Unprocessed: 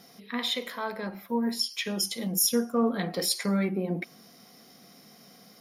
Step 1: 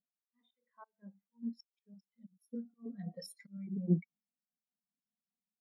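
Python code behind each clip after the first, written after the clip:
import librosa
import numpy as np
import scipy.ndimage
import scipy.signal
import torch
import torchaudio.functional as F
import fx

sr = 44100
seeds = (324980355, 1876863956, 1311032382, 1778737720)

y = fx.filter_lfo_notch(x, sr, shape='square', hz=4.9, low_hz=360.0, high_hz=4700.0, q=0.77)
y = fx.auto_swell(y, sr, attack_ms=382.0)
y = fx.spectral_expand(y, sr, expansion=2.5)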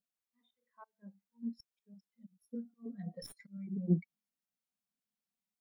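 y = fx.tracing_dist(x, sr, depth_ms=0.034)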